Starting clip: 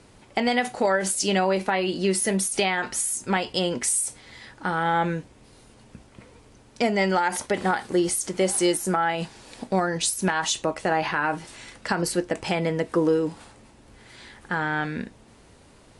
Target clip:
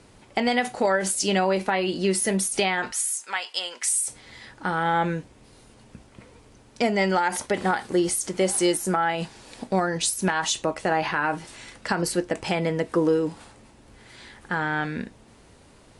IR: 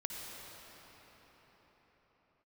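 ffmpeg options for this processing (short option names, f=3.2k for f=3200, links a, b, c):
-filter_complex "[0:a]asettb=1/sr,asplit=3[a][b][c];[a]atrim=end=2.924[d];[b]atrim=start=2.92:end=4.08,asetpts=PTS-STARTPTS,afade=t=in:d=0.004:c=qsin,afade=t=out:st=1.156:d=0.004:c=qsin,highpass=1.1k[e];[c]atrim=start=4.076[f];[d][e]acrossfade=d=0.004:c1=hsin:c2=qsin[g];[g][f]acrossfade=d=0.004:c1=qsin:c2=hsin"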